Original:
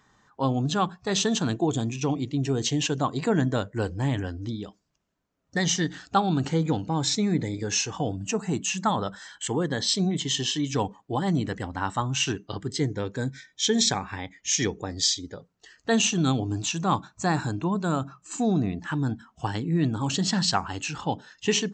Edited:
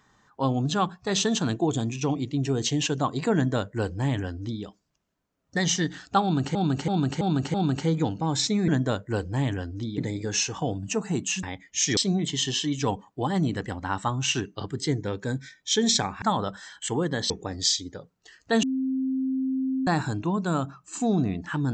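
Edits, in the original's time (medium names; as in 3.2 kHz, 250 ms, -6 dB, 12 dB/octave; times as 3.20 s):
3.34–4.64 s: copy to 7.36 s
6.22–6.55 s: loop, 5 plays
8.81–9.89 s: swap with 14.14–14.68 s
16.01–17.25 s: bleep 263 Hz -23.5 dBFS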